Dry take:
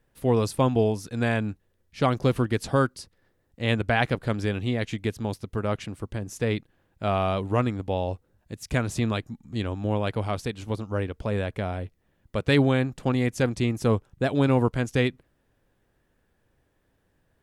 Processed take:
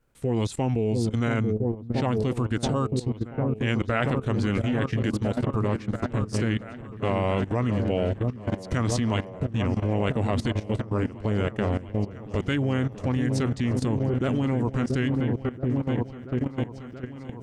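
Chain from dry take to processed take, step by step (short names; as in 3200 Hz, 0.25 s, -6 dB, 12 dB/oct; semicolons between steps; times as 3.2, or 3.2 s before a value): formant shift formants -3 st; repeats that get brighter 0.68 s, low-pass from 400 Hz, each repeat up 1 oct, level -6 dB; level quantiser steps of 15 dB; gain +6 dB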